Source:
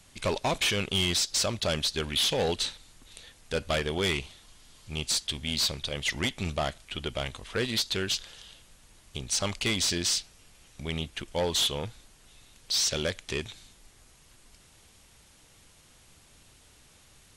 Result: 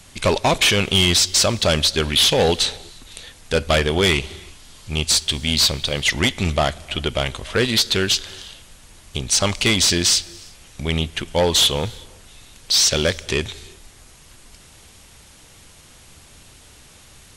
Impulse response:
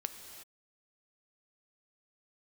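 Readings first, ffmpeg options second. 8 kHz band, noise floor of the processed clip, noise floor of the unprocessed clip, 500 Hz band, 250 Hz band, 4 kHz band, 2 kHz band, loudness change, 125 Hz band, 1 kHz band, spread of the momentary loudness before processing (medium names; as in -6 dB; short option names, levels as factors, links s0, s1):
+10.5 dB, -47 dBFS, -58 dBFS, +10.5 dB, +10.5 dB, +10.5 dB, +10.5 dB, +10.5 dB, +11.5 dB, +10.5 dB, 10 LU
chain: -filter_complex "[0:a]asplit=2[s0][s1];[s1]equalizer=f=78:t=o:w=0.3:g=11[s2];[1:a]atrim=start_sample=2205[s3];[s2][s3]afir=irnorm=-1:irlink=0,volume=0.237[s4];[s0][s4]amix=inputs=2:normalize=0,volume=2.82"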